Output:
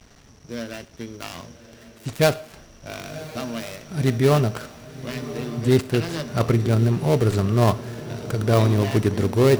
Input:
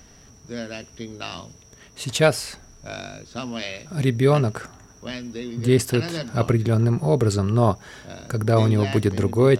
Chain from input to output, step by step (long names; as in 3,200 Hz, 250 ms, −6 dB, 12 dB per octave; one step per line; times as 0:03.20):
gap after every zero crossing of 0.15 ms
feedback delay with all-pass diffusion 1,085 ms, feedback 54%, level −14 dB
four-comb reverb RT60 0.6 s, combs from 27 ms, DRR 16.5 dB